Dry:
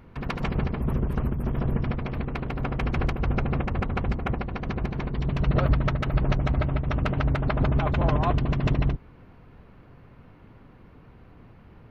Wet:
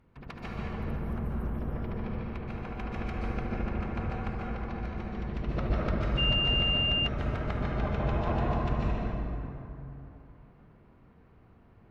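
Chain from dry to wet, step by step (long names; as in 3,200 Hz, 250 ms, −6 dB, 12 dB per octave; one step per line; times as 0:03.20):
harmonic generator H 3 −15 dB, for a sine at −10 dBFS
dense smooth reverb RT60 3.2 s, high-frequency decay 0.45×, pre-delay 115 ms, DRR −5 dB
0:06.17–0:07.06: steady tone 2,800 Hz −18 dBFS
level −7.5 dB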